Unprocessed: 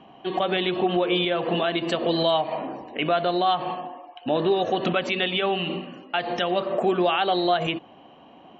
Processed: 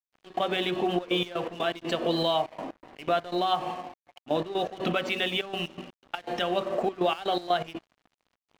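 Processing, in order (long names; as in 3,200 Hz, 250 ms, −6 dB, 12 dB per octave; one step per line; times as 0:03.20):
hum removal 93.71 Hz, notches 20
gate pattern ".x.xxxxx.x.x" 122 BPM −12 dB
dead-zone distortion −43.5 dBFS
level −2.5 dB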